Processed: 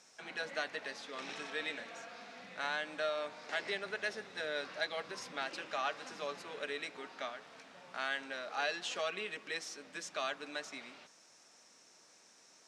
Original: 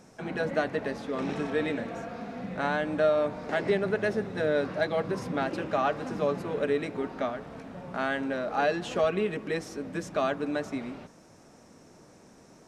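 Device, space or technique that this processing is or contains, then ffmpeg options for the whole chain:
piezo pickup straight into a mixer: -af "lowpass=5100,aderivative,volume=8dB"

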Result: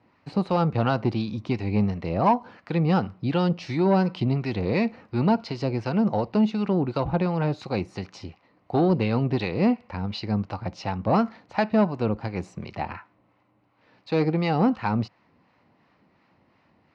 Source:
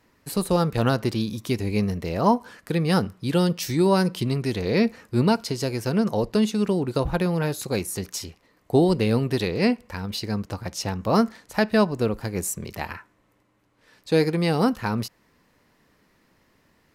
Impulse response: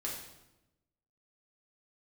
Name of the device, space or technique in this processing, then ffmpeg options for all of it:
guitar amplifier with harmonic tremolo: -filter_complex "[0:a]acrossover=split=700[link_01][link_02];[link_01]aeval=exprs='val(0)*(1-0.5/2+0.5/2*cos(2*PI*2.8*n/s))':channel_layout=same[link_03];[link_02]aeval=exprs='val(0)*(1-0.5/2-0.5/2*cos(2*PI*2.8*n/s))':channel_layout=same[link_04];[link_03][link_04]amix=inputs=2:normalize=0,asoftclip=type=tanh:threshold=-16dB,highpass=93,equalizer=frequency=99:width_type=q:width=4:gain=3,equalizer=frequency=430:width_type=q:width=4:gain=-5,equalizer=frequency=780:width_type=q:width=4:gain=5,equalizer=frequency=1700:width_type=q:width=4:gain=-6,equalizer=frequency=3400:width_type=q:width=4:gain=-7,lowpass=frequency=3900:width=0.5412,lowpass=frequency=3900:width=1.3066,volume=3.5dB"

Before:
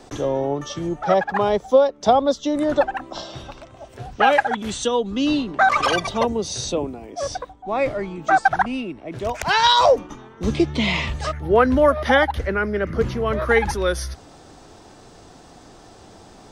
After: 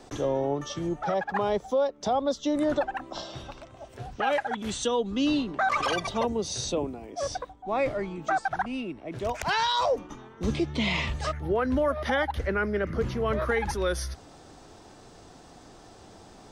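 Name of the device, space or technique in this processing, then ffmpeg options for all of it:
stacked limiters: -af "alimiter=limit=-9.5dB:level=0:latency=1:release=290,alimiter=limit=-13dB:level=0:latency=1:release=23,volume=-4.5dB"

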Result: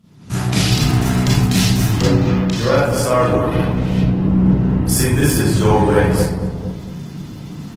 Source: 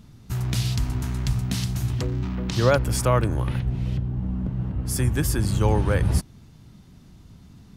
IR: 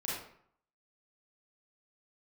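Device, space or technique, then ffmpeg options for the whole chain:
far-field microphone of a smart speaker: -filter_complex "[0:a]asettb=1/sr,asplit=3[link_01][link_02][link_03];[link_01]atrim=end=2.074[link_04];[link_02]atrim=start=2.07:end=2.94,asetpts=PTS-STARTPTS,afade=type=in:duration=0.004:curve=qsin,afade=type=out:start_time=0.866:duration=0.004:curve=qsin,highpass=frequency=52:width=0.5412,highpass=frequency=52:width=1.3066[link_05];[link_03]atrim=start=2.936[link_06];[link_04][link_05]acrossfade=duration=0.004:curve1=hsin:curve2=qsin[link_07];[link_07][link_06]acrossfade=duration=0.004:curve1=qsin:curve2=hsin,asplit=2[link_08][link_09];[link_09]adelay=228,lowpass=frequency=880:poles=1,volume=-5.5dB,asplit=2[link_10][link_11];[link_11]adelay=228,lowpass=frequency=880:poles=1,volume=0.31,asplit=2[link_12][link_13];[link_13]adelay=228,lowpass=frequency=880:poles=1,volume=0.31,asplit=2[link_14][link_15];[link_15]adelay=228,lowpass=frequency=880:poles=1,volume=0.31[link_16];[link_08][link_10][link_12][link_14][link_16]amix=inputs=5:normalize=0[link_17];[1:a]atrim=start_sample=2205[link_18];[link_17][link_18]afir=irnorm=-1:irlink=0,highpass=120,dynaudnorm=framelen=170:gausssize=3:maxgain=16.5dB,volume=-1dB" -ar 48000 -c:a libopus -b:a 16k

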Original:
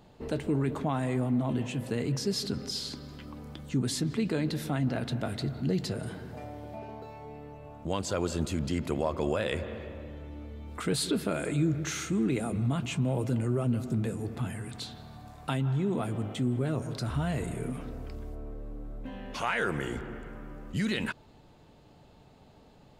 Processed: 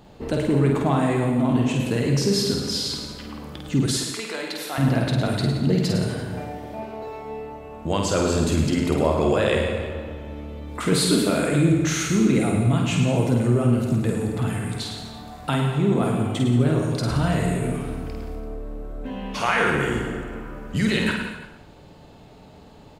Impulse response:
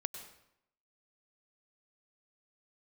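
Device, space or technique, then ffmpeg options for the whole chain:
bathroom: -filter_complex "[1:a]atrim=start_sample=2205[link_01];[0:a][link_01]afir=irnorm=-1:irlink=0,asettb=1/sr,asplit=3[link_02][link_03][link_04];[link_02]atrim=end=3.864[link_05];[link_03]atrim=start=3.86:end=4.78,asetpts=PTS-STARTPTS,afade=type=in:duration=0.004:curve=qsin,afade=type=out:start_time=0.916:duration=0.004:curve=qsin,highpass=710[link_06];[link_04]atrim=start=4.776[link_07];[link_05][link_06]acrossfade=duration=0.004:curve1=hsin:curve2=qsin[link_08];[link_08][link_07]acrossfade=duration=0.004:curve1=qsin:curve2=hsin,aecho=1:1:50|107.5|173.6|249.7|337.1:0.631|0.398|0.251|0.158|0.1,volume=8dB"

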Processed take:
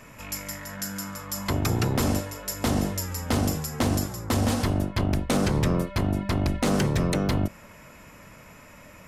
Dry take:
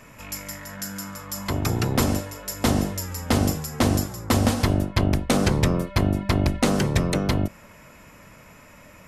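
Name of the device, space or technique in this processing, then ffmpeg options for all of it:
limiter into clipper: -af "alimiter=limit=-13dB:level=0:latency=1:release=50,asoftclip=type=hard:threshold=-16.5dB"

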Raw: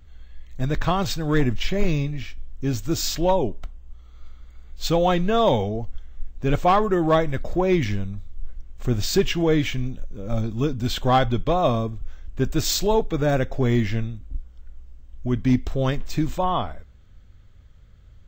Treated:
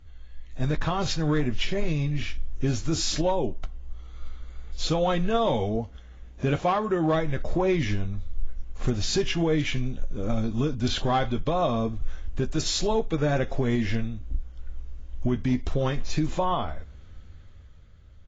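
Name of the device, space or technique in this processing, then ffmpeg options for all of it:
low-bitrate web radio: -filter_complex "[0:a]asettb=1/sr,asplit=3[link_01][link_02][link_03];[link_01]atrim=end=5.764[link_04];[link_02]atrim=start=5.76:end=7.14,asetpts=PTS-STARTPTS,afade=type=in:duration=0.004:curve=qsin,afade=type=out:start_time=1.376:duration=0.004:curve=qsin,highpass=60[link_05];[link_03]atrim=start=7.136[link_06];[link_04][link_05]acrossfade=duration=0.004:curve1=hsin:curve2=qsin[link_07];[link_07][link_06]acrossfade=duration=0.004:curve1=qsin:curve2=hsin,asplit=2[link_08][link_09];[link_09]adelay=13,volume=-9.5dB[link_10];[link_08][link_10]amix=inputs=2:normalize=0,dynaudnorm=framelen=150:gausssize=13:maxgain=11dB,alimiter=limit=-13dB:level=0:latency=1:release=384,volume=-2.5dB" -ar 16000 -c:a aac -b:a 24k

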